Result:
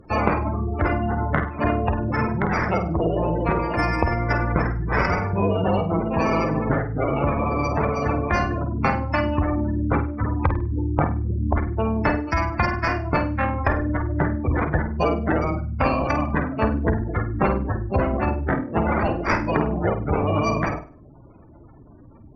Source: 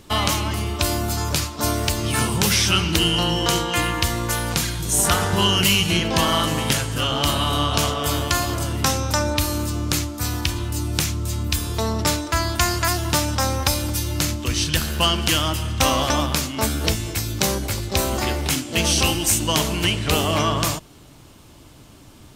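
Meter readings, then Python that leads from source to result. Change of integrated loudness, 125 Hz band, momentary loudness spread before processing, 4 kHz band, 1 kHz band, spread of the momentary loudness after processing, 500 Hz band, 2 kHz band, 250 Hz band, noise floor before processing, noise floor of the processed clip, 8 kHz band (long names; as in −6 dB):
−2.5 dB, 0.0 dB, 6 LU, −23.0 dB, +0.5 dB, 3 LU, +2.5 dB, −1.5 dB, +1.5 dB, −46 dBFS, −46 dBFS, below −25 dB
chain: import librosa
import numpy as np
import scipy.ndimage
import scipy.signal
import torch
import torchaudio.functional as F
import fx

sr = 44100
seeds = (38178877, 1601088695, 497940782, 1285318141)

p1 = fx.sample_hold(x, sr, seeds[0], rate_hz=3500.0, jitter_pct=0)
p2 = fx.rider(p1, sr, range_db=10, speed_s=0.5)
p3 = fx.spec_gate(p2, sr, threshold_db=-15, keep='strong')
p4 = fx.cheby_harmonics(p3, sr, harmonics=(4,), levels_db=(-25,), full_scale_db=-1.0)
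y = p4 + fx.room_flutter(p4, sr, wall_m=8.6, rt60_s=0.34, dry=0)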